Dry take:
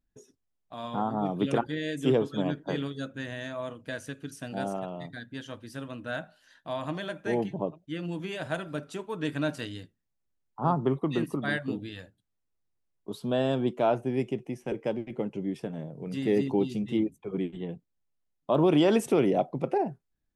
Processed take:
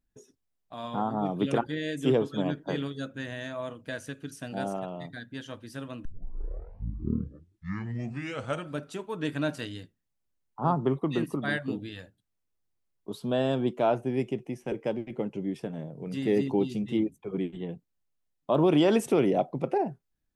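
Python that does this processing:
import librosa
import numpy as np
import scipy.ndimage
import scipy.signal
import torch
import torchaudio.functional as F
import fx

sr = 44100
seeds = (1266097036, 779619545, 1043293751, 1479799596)

y = fx.edit(x, sr, fx.tape_start(start_s=6.05, length_s=2.76), tone=tone)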